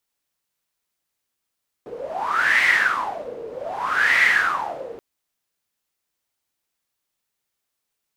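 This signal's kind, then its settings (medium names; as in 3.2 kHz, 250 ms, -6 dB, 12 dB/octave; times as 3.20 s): wind-like swept noise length 3.13 s, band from 450 Hz, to 2 kHz, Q 11, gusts 2, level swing 18 dB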